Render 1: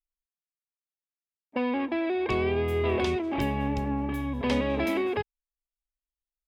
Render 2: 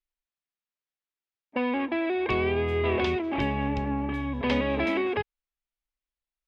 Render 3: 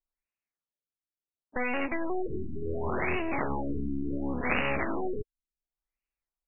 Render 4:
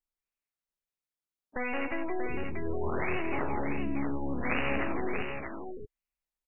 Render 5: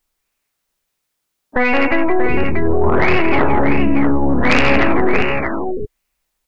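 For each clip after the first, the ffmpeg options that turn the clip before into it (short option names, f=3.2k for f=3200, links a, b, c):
-af "lowpass=2.9k,highshelf=f=2.1k:g=8.5"
-af "aeval=exprs='0.237*(cos(1*acos(clip(val(0)/0.237,-1,1)))-cos(1*PI/2))+0.119*(cos(3*acos(clip(val(0)/0.237,-1,1)))-cos(3*PI/2))+0.0944*(cos(6*acos(clip(val(0)/0.237,-1,1)))-cos(6*PI/2))+0.0133*(cos(7*acos(clip(val(0)/0.237,-1,1)))-cos(7*PI/2))+0.0944*(cos(8*acos(clip(val(0)/0.237,-1,1)))-cos(8*PI/2))':c=same,aexciter=amount=1.4:drive=7.7:freq=2.1k,afftfilt=real='re*lt(b*sr/1024,370*pow(3000/370,0.5+0.5*sin(2*PI*0.7*pts/sr)))':imag='im*lt(b*sr/1024,370*pow(3000/370,0.5+0.5*sin(2*PI*0.7*pts/sr)))':win_size=1024:overlap=0.75"
-af "aecho=1:1:168|636:0.422|0.501,volume=-3dB"
-af "aeval=exprs='0.211*sin(PI/2*2.24*val(0)/0.211)':c=same,volume=8.5dB"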